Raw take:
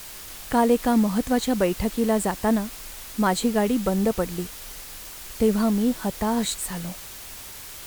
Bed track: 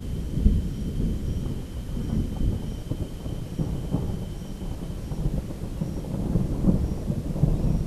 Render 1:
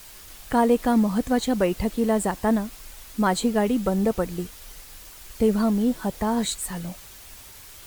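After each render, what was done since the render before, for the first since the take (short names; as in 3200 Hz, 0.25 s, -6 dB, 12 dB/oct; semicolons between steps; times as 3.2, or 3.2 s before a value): denoiser 6 dB, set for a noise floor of -40 dBFS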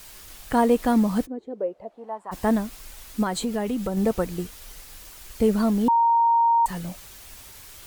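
1.25–2.31 band-pass 310 Hz -> 1100 Hz, Q 5.1; 3.23–3.97 compressor 2.5:1, threshold -24 dBFS; 5.88–6.66 bleep 929 Hz -15.5 dBFS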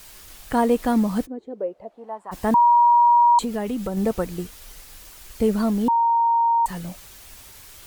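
2.54–3.39 bleep 953 Hz -11.5 dBFS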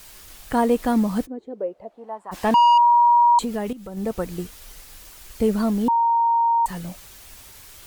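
2.34–2.78 overdrive pedal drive 13 dB, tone 4300 Hz, clips at -10.5 dBFS; 3.73–4.34 fade in, from -15 dB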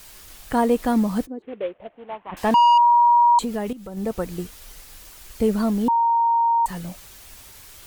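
1.42–2.37 CVSD 16 kbps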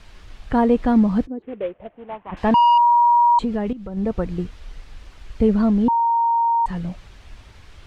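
LPF 3300 Hz 12 dB/oct; low shelf 190 Hz +10.5 dB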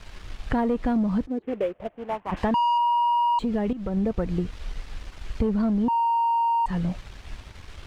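sample leveller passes 1; compressor 5:1, threshold -22 dBFS, peak gain reduction 10.5 dB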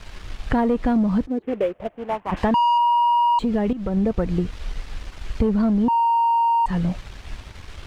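gain +4 dB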